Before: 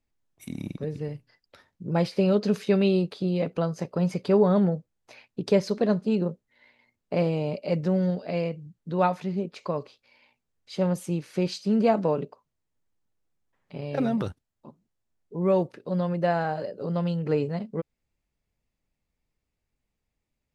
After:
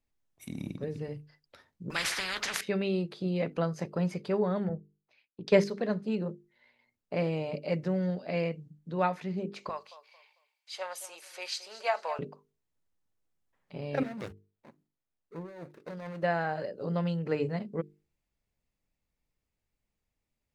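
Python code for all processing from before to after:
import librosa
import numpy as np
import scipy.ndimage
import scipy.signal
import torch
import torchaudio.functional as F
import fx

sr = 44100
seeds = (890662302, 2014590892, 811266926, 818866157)

y = fx.chain(x, sr, fx.peak_eq(hz=1500.0, db=12.0, octaves=0.61),
    fx.spectral_comp(ratio=10.0), at=(1.9, 2.61))
y = fx.chain(y, sr, fx.env_lowpass(base_hz=2800.0, full_db=-16.0),
    fx.band_widen(depth_pct=100), at=(4.69, 5.64))
y = fx.chain(y, sr, fx.highpass(hz=720.0, slope=24),
    fx.high_shelf(hz=4600.0, db=5.0),
    fx.echo_feedback(ms=223, feedback_pct=29, wet_db=-14.5), at=(9.69, 12.19))
y = fx.chain(y, sr, fx.median_filter(points=41),
    fx.low_shelf(hz=470.0, db=-12.0),
    fx.over_compress(threshold_db=-38.0, ratio=-1.0), at=(14.03, 16.23))
y = fx.hum_notches(y, sr, base_hz=50, count=9)
y = fx.dynamic_eq(y, sr, hz=1900.0, q=1.7, threshold_db=-48.0, ratio=4.0, max_db=7)
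y = fx.rider(y, sr, range_db=3, speed_s=0.5)
y = y * 10.0 ** (-5.5 / 20.0)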